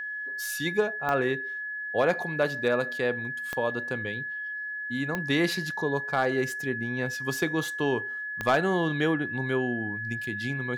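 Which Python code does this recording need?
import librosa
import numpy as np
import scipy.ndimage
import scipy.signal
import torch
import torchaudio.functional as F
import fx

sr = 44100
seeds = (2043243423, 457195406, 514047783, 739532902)

y = fx.fix_declip(x, sr, threshold_db=-14.5)
y = fx.fix_declick_ar(y, sr, threshold=10.0)
y = fx.notch(y, sr, hz=1700.0, q=30.0)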